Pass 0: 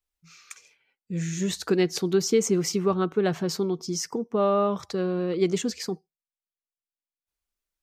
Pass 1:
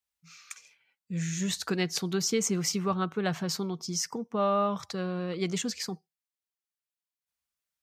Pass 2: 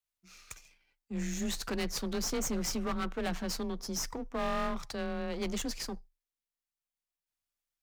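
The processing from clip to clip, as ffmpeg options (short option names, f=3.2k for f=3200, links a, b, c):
-af "highpass=93,equalizer=f=370:t=o:w=1.2:g=-10"
-af "aeval=exprs='if(lt(val(0),0),0.251*val(0),val(0))':c=same,afreqshift=22,asoftclip=type=hard:threshold=-29dB"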